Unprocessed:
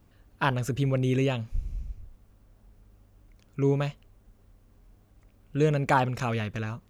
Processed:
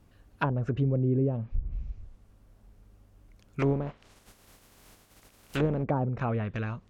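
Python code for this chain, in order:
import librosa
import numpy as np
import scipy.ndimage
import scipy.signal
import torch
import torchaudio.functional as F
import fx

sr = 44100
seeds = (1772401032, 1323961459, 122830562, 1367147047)

y = fx.spec_flatten(x, sr, power=0.44, at=(3.59, 5.82), fade=0.02)
y = fx.env_lowpass_down(y, sr, base_hz=490.0, full_db=-21.5)
y = fx.lowpass(y, sr, hz=2100.0, slope=6, at=(1.18, 1.72))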